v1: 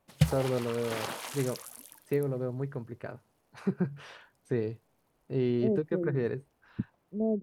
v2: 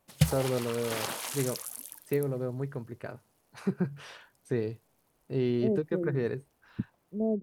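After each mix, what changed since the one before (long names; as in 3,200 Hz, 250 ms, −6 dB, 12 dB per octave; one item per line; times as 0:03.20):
master: add high-shelf EQ 4,700 Hz +8 dB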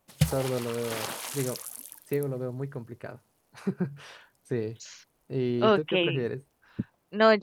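second voice: remove Gaussian smoothing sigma 20 samples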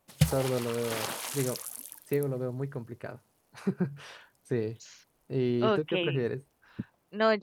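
second voice −5.0 dB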